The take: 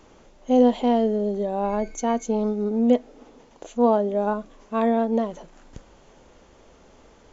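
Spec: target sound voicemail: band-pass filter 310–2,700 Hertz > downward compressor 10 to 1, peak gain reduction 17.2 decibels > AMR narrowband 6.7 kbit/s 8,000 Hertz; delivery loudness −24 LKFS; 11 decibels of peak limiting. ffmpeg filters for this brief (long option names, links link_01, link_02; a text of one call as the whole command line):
ffmpeg -i in.wav -af "alimiter=limit=-18dB:level=0:latency=1,highpass=310,lowpass=2700,acompressor=threshold=-41dB:ratio=10,volume=23.5dB" -ar 8000 -c:a libopencore_amrnb -b:a 6700 out.amr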